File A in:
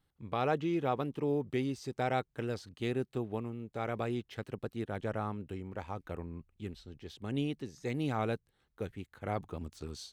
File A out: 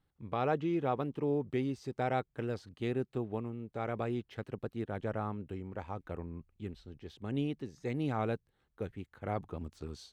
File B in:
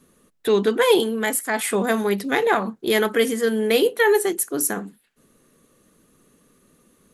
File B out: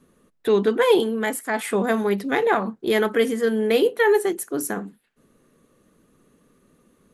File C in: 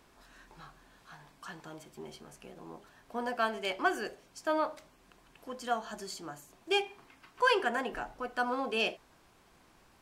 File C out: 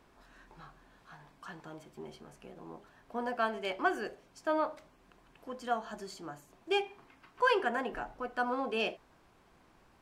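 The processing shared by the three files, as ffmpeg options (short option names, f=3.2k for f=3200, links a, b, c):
-af "highshelf=f=3.2k:g=-8.5"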